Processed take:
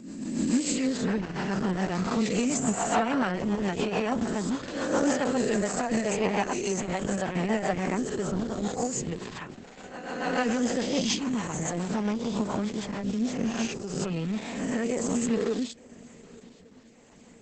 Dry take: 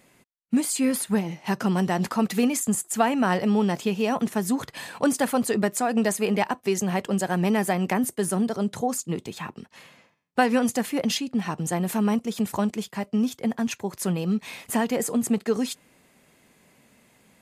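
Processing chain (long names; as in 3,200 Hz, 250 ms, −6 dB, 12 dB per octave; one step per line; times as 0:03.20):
peak hold with a rise ahead of every peak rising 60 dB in 1.45 s
on a send: feedback echo with a long and a short gap by turns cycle 1,170 ms, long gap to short 3 to 1, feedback 50%, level −24 dB
on the sum: rotating-speaker cabinet horn 7 Hz, later 1 Hz, at 0:12.92
level −3.5 dB
Opus 10 kbit/s 48,000 Hz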